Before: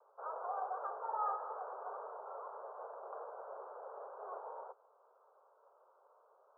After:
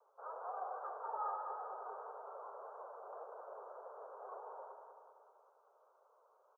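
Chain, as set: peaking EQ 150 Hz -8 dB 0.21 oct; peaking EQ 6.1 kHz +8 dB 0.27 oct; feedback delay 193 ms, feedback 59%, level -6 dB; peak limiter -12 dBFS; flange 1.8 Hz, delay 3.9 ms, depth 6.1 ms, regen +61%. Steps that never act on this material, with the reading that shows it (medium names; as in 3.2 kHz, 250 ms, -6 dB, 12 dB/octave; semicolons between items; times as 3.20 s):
peaking EQ 150 Hz: input has nothing below 340 Hz; peaking EQ 6.1 kHz: input has nothing above 1.7 kHz; peak limiter -12 dBFS: peak at its input -25.5 dBFS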